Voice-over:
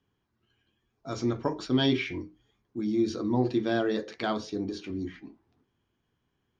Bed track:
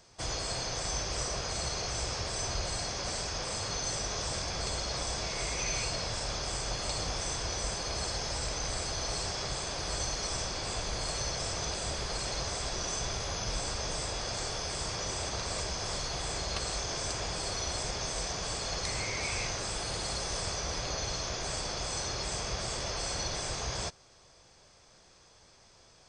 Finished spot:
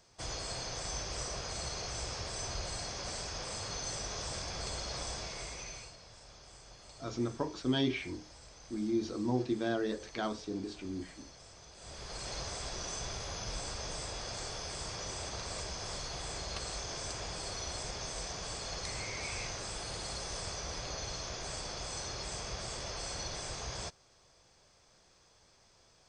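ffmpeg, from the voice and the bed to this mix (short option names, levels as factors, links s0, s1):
-filter_complex "[0:a]adelay=5950,volume=0.501[s0];[1:a]volume=2.99,afade=t=out:st=5.07:d=0.89:silence=0.177828,afade=t=in:st=11.74:d=0.6:silence=0.188365[s1];[s0][s1]amix=inputs=2:normalize=0"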